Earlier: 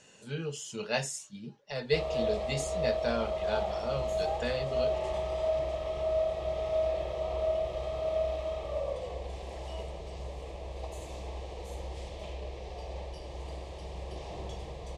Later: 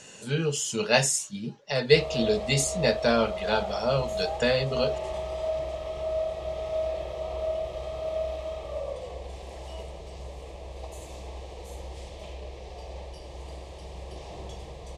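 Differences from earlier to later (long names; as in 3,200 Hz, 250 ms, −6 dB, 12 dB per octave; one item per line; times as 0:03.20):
speech +9.0 dB
master: add high-shelf EQ 7,000 Hz +6.5 dB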